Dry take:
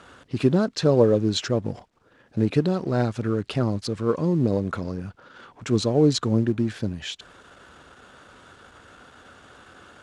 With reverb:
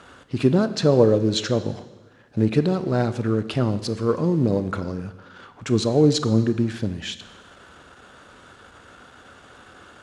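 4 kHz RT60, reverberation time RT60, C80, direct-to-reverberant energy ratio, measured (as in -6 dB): 1.2 s, 1.2 s, 15.0 dB, 11.5 dB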